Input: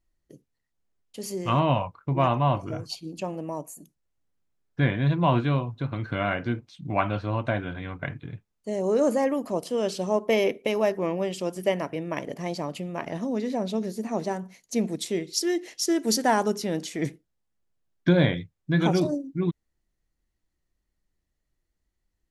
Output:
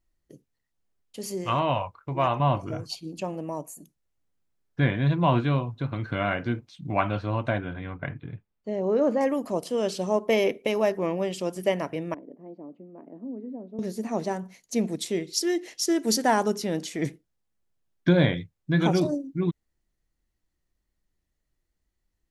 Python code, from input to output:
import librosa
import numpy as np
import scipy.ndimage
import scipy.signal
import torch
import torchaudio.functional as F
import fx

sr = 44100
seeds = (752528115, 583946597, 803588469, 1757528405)

y = fx.peak_eq(x, sr, hz=190.0, db=-9.0, octaves=1.4, at=(1.44, 2.4))
y = fx.air_absorb(y, sr, metres=220.0, at=(7.58, 9.21))
y = fx.ladder_bandpass(y, sr, hz=320.0, resonance_pct=50, at=(12.14, 13.79))